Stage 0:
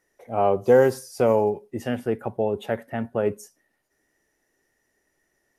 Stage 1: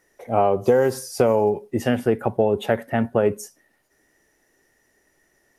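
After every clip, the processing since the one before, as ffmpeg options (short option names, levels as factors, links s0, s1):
-af "acompressor=threshold=0.0891:ratio=10,volume=2.37"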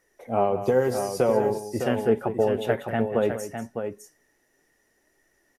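-af "flanger=delay=1.6:depth=7:regen=63:speed=0.57:shape=triangular,aecho=1:1:189|607:0.251|0.422"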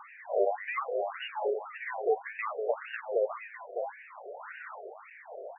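-af "aeval=exprs='val(0)+0.5*0.0376*sgn(val(0))':c=same,acrusher=samples=25:mix=1:aa=0.000001:lfo=1:lforange=25:lforate=0.6,afftfilt=real='re*between(b*sr/1024,500*pow(2100/500,0.5+0.5*sin(2*PI*1.8*pts/sr))/1.41,500*pow(2100/500,0.5+0.5*sin(2*PI*1.8*pts/sr))*1.41)':imag='im*between(b*sr/1024,500*pow(2100/500,0.5+0.5*sin(2*PI*1.8*pts/sr))/1.41,500*pow(2100/500,0.5+0.5*sin(2*PI*1.8*pts/sr))*1.41)':win_size=1024:overlap=0.75,volume=0.631"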